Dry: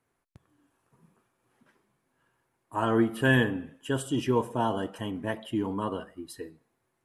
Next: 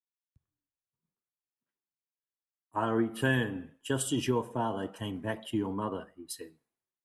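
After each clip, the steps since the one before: compressor 4:1, threshold -28 dBFS, peak gain reduction 9.5 dB; three-band expander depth 100%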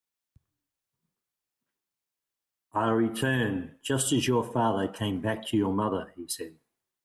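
limiter -23 dBFS, peak gain reduction 8 dB; gain +7 dB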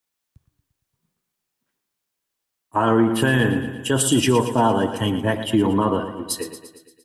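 feedback echo 0.115 s, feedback 60%, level -11.5 dB; gain +7.5 dB

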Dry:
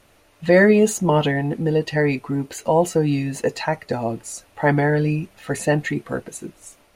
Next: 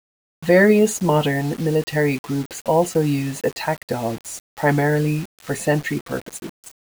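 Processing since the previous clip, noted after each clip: requantised 6-bit, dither none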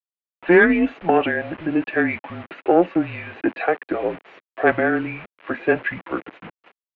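self-modulated delay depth 0.07 ms; mistuned SSB -170 Hz 470–2900 Hz; gain +3.5 dB

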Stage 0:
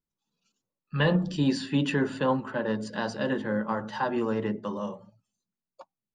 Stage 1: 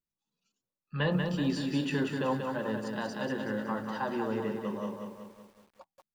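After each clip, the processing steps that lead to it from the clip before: lo-fi delay 0.187 s, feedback 55%, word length 9-bit, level -5 dB; gain -5.5 dB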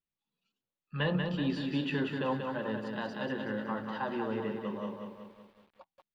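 resonant high shelf 4800 Hz -10.5 dB, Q 1.5; gain -2 dB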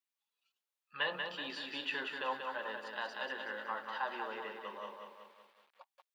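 HPF 820 Hz 12 dB/oct; gain +1 dB

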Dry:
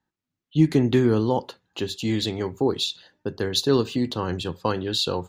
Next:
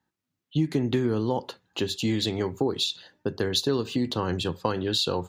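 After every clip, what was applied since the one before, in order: HPF 58 Hz; compressor 4:1, threshold -24 dBFS, peak gain reduction 10.5 dB; gain +2 dB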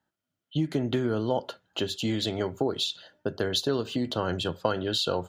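small resonant body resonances 630/1400/3100 Hz, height 11 dB, ringing for 25 ms; gain -3 dB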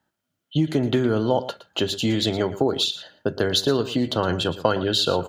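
echo 0.115 s -15 dB; gain +6 dB

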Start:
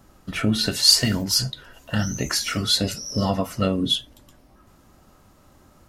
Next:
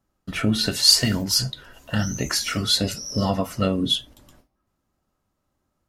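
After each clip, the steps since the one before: gate with hold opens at -41 dBFS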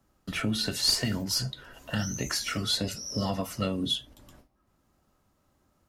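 one diode to ground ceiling -4.5 dBFS; three-band squash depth 40%; gain -6.5 dB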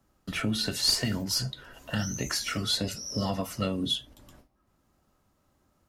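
nothing audible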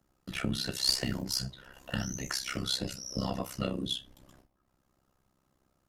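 AM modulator 65 Hz, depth 90%; on a send at -16 dB: reverb RT60 0.30 s, pre-delay 6 ms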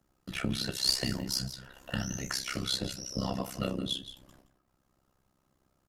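echo 0.17 s -13 dB

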